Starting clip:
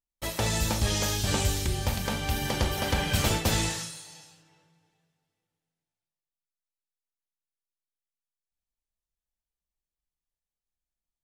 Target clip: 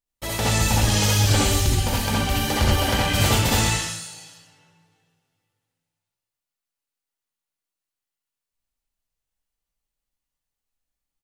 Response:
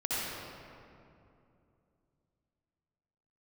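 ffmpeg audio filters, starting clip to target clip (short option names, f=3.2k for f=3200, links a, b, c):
-filter_complex "[0:a]asettb=1/sr,asplit=3[a][b][c];[a]atrim=end=0.654[d];[b]atrim=start=0.65:end=2.91,asetpts=PTS-STARTPTS,afade=t=in:d=0.004:c=qsin,afade=t=out:st=2.256:d=0.004:c=qsin,aphaser=in_gain=1:out_gain=1:delay=4.6:decay=0.43:speed=2:type=triangular[e];[c]atrim=start=2.906[f];[d][e]acrossfade=d=0.004:c1=hsin:c2=qsin[g];[g][f]acrossfade=d=0.004:c1=qsin:c2=hsin,aecho=1:1:126:0.316[h];[1:a]atrim=start_sample=2205,atrim=end_sample=3969[i];[h][i]afir=irnorm=-1:irlink=0,volume=4.5dB"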